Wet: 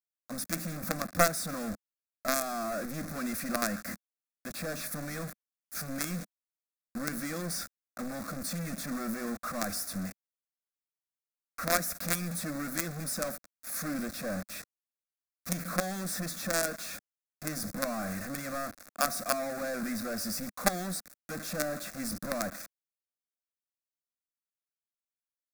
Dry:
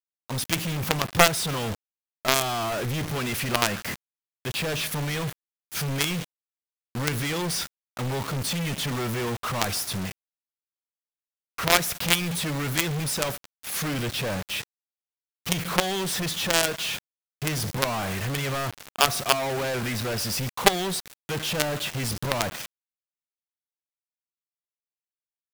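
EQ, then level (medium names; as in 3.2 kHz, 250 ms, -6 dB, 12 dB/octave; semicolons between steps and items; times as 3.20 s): peaking EQ 2.1 kHz -3.5 dB 0.39 oct; static phaser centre 610 Hz, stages 8; dynamic bell 210 Hz, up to +5 dB, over -46 dBFS, Q 2.2; -4.5 dB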